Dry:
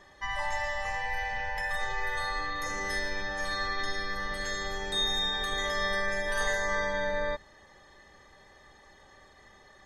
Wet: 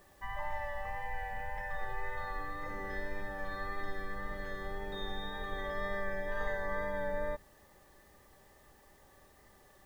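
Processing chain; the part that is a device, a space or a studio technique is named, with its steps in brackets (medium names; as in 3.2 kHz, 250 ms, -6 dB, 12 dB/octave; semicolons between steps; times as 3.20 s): cassette deck with a dirty head (tape spacing loss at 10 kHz 44 dB; wow and flutter 17 cents; white noise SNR 31 dB); trim -2 dB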